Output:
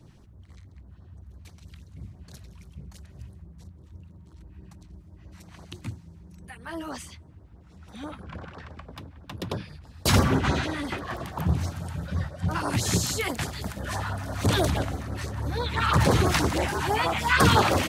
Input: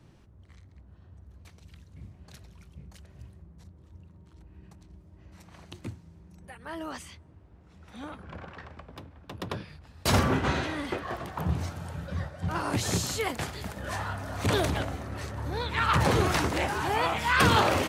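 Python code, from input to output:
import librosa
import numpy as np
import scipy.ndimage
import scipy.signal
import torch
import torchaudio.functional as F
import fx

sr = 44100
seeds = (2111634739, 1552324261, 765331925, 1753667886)

y = fx.filter_lfo_notch(x, sr, shape='sine', hz=6.1, low_hz=390.0, high_hz=2900.0, q=0.74)
y = y * librosa.db_to_amplitude(4.5)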